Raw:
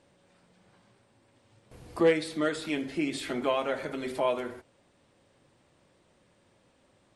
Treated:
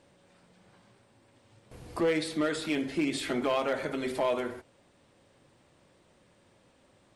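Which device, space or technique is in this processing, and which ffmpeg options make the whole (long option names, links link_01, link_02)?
limiter into clipper: -af "alimiter=limit=-20dB:level=0:latency=1:release=41,asoftclip=type=hard:threshold=-23.5dB,volume=2dB"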